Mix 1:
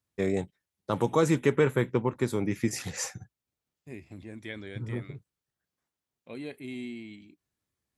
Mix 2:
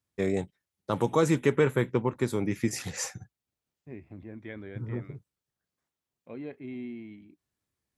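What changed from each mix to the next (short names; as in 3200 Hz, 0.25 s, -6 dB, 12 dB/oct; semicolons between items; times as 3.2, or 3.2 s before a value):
second voice: add LPF 1700 Hz 12 dB/oct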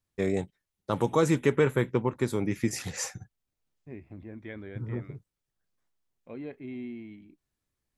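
master: remove HPF 66 Hz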